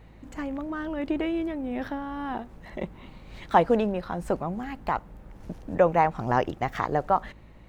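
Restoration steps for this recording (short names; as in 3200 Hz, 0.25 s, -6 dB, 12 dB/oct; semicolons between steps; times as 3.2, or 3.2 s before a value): de-hum 54.3 Hz, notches 4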